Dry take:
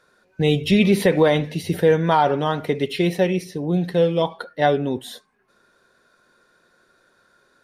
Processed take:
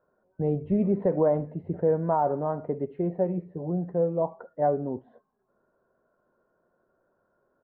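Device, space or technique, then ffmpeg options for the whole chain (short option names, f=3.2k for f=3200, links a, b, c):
under water: -filter_complex "[0:a]lowpass=f=1.1k:w=0.5412,lowpass=f=1.1k:w=1.3066,equalizer=f=630:t=o:w=0.26:g=6,asplit=3[a][b][c];[a]afade=t=out:st=3.28:d=0.02[d];[b]asplit=2[e][f];[f]adelay=12,volume=-4dB[g];[e][g]amix=inputs=2:normalize=0,afade=t=in:st=3.28:d=0.02,afade=t=out:st=3.68:d=0.02[h];[c]afade=t=in:st=3.68:d=0.02[i];[d][h][i]amix=inputs=3:normalize=0,volume=-8dB"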